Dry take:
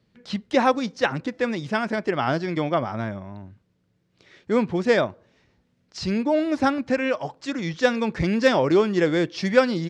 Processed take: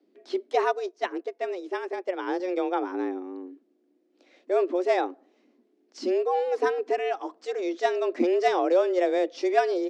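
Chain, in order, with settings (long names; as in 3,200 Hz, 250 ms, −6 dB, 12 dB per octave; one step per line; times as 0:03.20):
low-shelf EQ 350 Hz +12 dB
frequency shifter +180 Hz
0:00.65–0:02.40: expander for the loud parts 1.5 to 1, over −37 dBFS
level −9 dB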